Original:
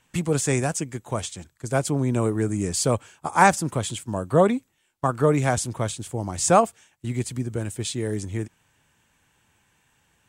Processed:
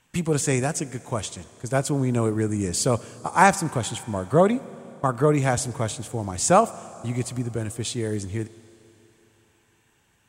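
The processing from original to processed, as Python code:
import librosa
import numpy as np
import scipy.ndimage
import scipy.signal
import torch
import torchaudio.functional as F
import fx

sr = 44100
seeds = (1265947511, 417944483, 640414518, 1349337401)

y = fx.rev_schroeder(x, sr, rt60_s=3.7, comb_ms=26, drr_db=18.0)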